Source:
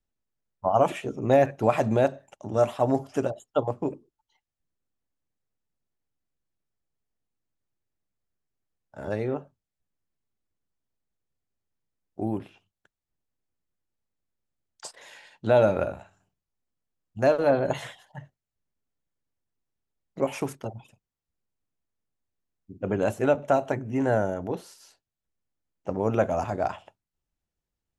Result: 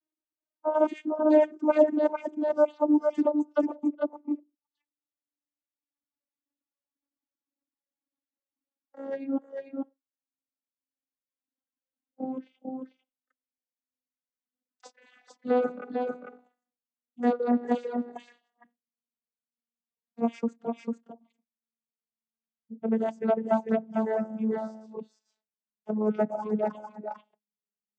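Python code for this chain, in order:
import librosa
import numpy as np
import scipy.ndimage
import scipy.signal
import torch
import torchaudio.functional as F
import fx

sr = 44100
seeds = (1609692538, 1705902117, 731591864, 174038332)

y = fx.vocoder_glide(x, sr, note=63, semitones=-7)
y = fx.echo_multitap(y, sr, ms=(416, 447), db=(-16.0, -3.5))
y = fx.dereverb_blind(y, sr, rt60_s=1.6)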